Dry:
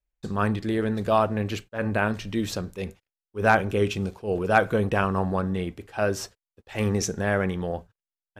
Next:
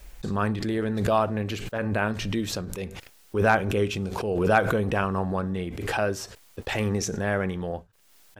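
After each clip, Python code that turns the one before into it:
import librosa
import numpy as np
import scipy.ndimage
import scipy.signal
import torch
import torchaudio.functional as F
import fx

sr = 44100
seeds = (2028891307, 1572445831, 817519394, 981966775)

y = fx.pre_swell(x, sr, db_per_s=40.0)
y = F.gain(torch.from_numpy(y), -2.0).numpy()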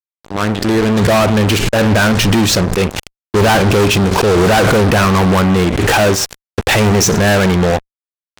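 y = fx.fade_in_head(x, sr, length_s=1.46)
y = scipy.signal.sosfilt(scipy.signal.cheby1(2, 1.0, 7400.0, 'lowpass', fs=sr, output='sos'), y)
y = fx.fuzz(y, sr, gain_db=37.0, gate_db=-39.0)
y = F.gain(torch.from_numpy(y), 4.5).numpy()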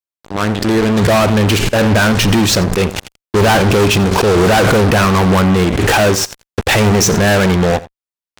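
y = x + 10.0 ** (-18.5 / 20.0) * np.pad(x, (int(86 * sr / 1000.0), 0))[:len(x)]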